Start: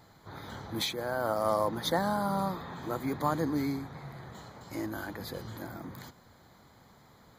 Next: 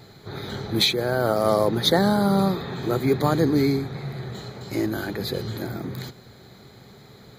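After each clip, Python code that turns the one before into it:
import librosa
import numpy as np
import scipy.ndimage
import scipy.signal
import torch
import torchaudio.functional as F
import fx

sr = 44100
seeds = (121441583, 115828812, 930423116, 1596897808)

y = fx.graphic_eq_31(x, sr, hz=(125, 200, 400, 1000, 2500, 4000), db=(9, 5, 11, -8, 6, 8))
y = y * librosa.db_to_amplitude(7.5)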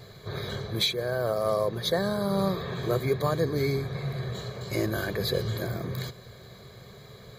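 y = x + 0.63 * np.pad(x, (int(1.8 * sr / 1000.0), 0))[:len(x)]
y = fx.rider(y, sr, range_db=4, speed_s=0.5)
y = y * librosa.db_to_amplitude(-5.0)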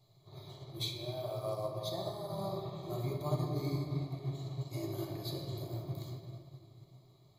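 y = fx.fixed_phaser(x, sr, hz=320.0, stages=8)
y = fx.room_shoebox(y, sr, seeds[0], volume_m3=130.0, walls='hard', distance_m=0.49)
y = fx.upward_expand(y, sr, threshold_db=-40.0, expansion=1.5)
y = y * librosa.db_to_amplitude(-9.0)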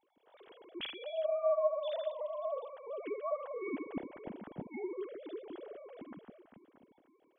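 y = fx.sine_speech(x, sr)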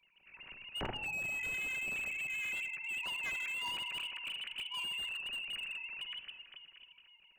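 y = fx.freq_invert(x, sr, carrier_hz=3200)
y = fx.room_shoebox(y, sr, seeds[1], volume_m3=3700.0, walls='furnished', distance_m=1.1)
y = fx.slew_limit(y, sr, full_power_hz=19.0)
y = y * librosa.db_to_amplitude(5.5)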